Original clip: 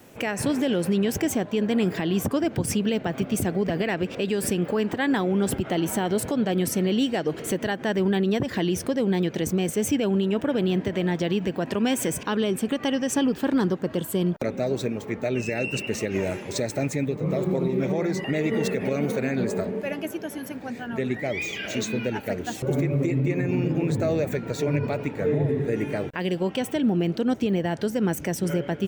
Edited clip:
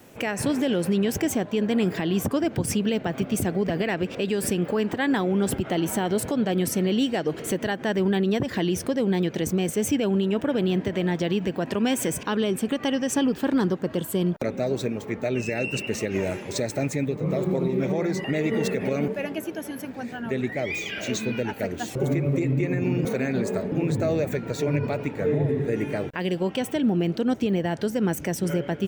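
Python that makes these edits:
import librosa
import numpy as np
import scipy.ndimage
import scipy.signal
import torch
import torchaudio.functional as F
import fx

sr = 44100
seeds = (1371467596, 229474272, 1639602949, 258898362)

y = fx.edit(x, sr, fx.move(start_s=19.08, length_s=0.67, to_s=23.72), tone=tone)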